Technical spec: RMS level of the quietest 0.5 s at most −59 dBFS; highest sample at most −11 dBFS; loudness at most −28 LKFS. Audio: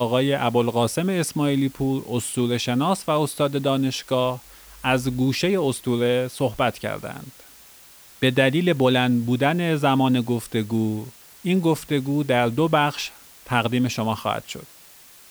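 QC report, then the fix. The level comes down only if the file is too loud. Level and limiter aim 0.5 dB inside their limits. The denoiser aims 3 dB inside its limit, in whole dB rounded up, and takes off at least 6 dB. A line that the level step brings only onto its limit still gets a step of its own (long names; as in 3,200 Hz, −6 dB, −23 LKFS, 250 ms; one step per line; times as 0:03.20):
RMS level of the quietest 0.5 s −48 dBFS: out of spec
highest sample −4.5 dBFS: out of spec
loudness −22.5 LKFS: out of spec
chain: broadband denoise 8 dB, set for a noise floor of −48 dBFS
level −6 dB
brickwall limiter −11.5 dBFS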